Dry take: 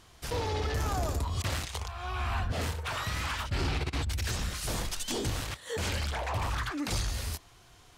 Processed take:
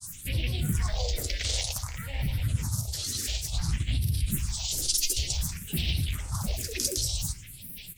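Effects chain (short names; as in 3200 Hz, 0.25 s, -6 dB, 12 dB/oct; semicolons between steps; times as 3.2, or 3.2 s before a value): added noise blue -50 dBFS; upward compressor, threshold -35 dBFS; Chebyshev low-pass 10000 Hz, order 4; tone controls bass +3 dB, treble +14 dB; flange 2 Hz, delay 9.5 ms, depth 2.6 ms, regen -63%; graphic EQ 125/500/2000/4000 Hz +9/-7/-12/+6 dB; grains 0.1 s, grains 20/s, pitch spread up and down by 12 st; spectral gain 0.79–2.24, 450–2300 Hz +7 dB; on a send at -12 dB: reverb RT60 1.1 s, pre-delay 3 ms; on the sum: phaser stages 4, 0.55 Hz, lowest notch 150–1200 Hz; gain +3.5 dB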